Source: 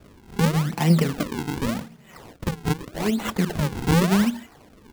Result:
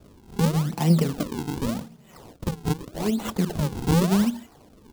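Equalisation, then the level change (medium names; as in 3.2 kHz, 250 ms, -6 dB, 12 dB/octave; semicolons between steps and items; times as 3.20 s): peaking EQ 1.9 kHz -7.5 dB 1.2 oct; -1.0 dB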